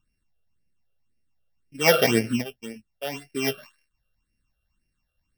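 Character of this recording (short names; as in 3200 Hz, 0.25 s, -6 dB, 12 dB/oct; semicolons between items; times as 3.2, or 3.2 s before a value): a buzz of ramps at a fixed pitch in blocks of 16 samples; phasing stages 8, 1.9 Hz, lowest notch 270–1100 Hz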